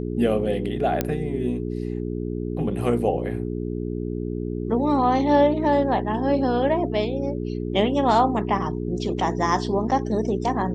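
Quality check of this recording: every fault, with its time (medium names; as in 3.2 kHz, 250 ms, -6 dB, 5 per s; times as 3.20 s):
hum 60 Hz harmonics 7 -28 dBFS
1.01 s: pop -8 dBFS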